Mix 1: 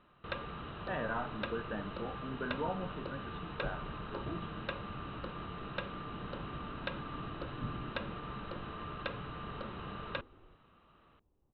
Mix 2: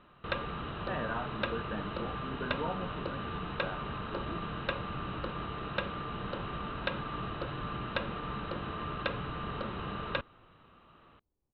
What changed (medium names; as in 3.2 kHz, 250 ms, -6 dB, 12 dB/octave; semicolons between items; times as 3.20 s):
first sound +5.5 dB; second sound -9.0 dB